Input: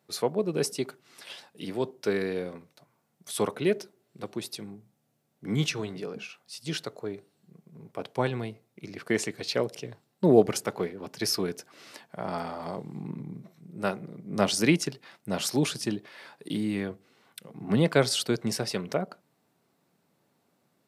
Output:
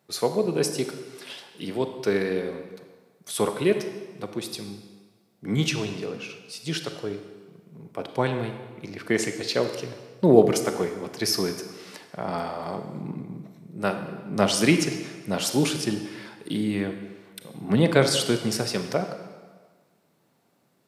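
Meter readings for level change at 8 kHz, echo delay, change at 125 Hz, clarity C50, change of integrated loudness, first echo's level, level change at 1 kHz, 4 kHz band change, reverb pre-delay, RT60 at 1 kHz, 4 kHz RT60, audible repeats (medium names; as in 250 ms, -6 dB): +3.5 dB, no echo, +3.5 dB, 8.0 dB, +3.5 dB, no echo, +4.0 dB, +3.5 dB, 29 ms, 1.5 s, 1.2 s, no echo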